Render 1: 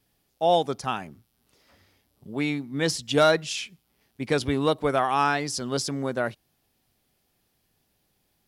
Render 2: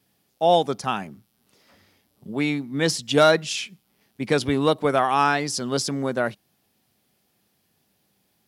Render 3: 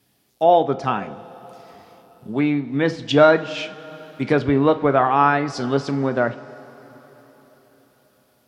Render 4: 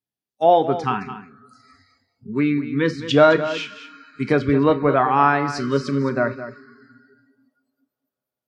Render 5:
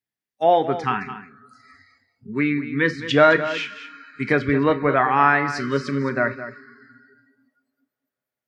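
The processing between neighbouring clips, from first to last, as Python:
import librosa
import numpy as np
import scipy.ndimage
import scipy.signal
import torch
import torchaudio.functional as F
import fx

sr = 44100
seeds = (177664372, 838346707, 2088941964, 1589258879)

y1 = scipy.signal.sosfilt(scipy.signal.butter(2, 100.0, 'highpass', fs=sr, output='sos'), x)
y1 = fx.peak_eq(y1, sr, hz=200.0, db=6.0, octaves=0.21)
y1 = y1 * 10.0 ** (3.0 / 20.0)
y2 = fx.env_lowpass_down(y1, sr, base_hz=1900.0, full_db=-20.0)
y2 = fx.rev_double_slope(y2, sr, seeds[0], early_s=0.33, late_s=4.6, knee_db=-18, drr_db=9.0)
y2 = y2 * 10.0 ** (3.5 / 20.0)
y3 = fx.noise_reduce_blind(y2, sr, reduce_db=29)
y3 = y3 + 10.0 ** (-12.5 / 20.0) * np.pad(y3, (int(215 * sr / 1000.0), 0))[:len(y3)]
y4 = fx.peak_eq(y3, sr, hz=1900.0, db=10.5, octaves=0.71)
y4 = y4 * 10.0 ** (-2.5 / 20.0)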